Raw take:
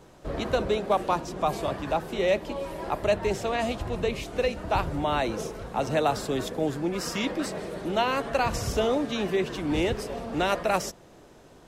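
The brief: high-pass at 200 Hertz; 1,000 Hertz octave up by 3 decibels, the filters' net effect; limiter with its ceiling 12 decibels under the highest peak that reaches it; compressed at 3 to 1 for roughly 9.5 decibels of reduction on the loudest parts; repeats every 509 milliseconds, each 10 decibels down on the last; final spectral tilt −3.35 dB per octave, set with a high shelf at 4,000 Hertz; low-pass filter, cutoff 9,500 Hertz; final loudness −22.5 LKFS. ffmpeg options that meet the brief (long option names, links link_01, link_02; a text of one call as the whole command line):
ffmpeg -i in.wav -af "highpass=200,lowpass=9500,equalizer=frequency=1000:width_type=o:gain=3.5,highshelf=frequency=4000:gain=8.5,acompressor=threshold=-31dB:ratio=3,alimiter=level_in=5.5dB:limit=-24dB:level=0:latency=1,volume=-5.5dB,aecho=1:1:509|1018|1527|2036:0.316|0.101|0.0324|0.0104,volume=15.5dB" out.wav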